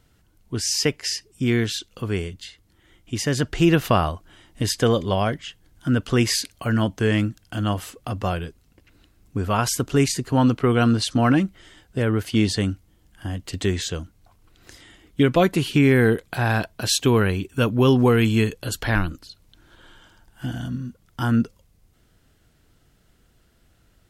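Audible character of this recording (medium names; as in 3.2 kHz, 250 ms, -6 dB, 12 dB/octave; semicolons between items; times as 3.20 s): noise floor -61 dBFS; spectral tilt -5.5 dB/octave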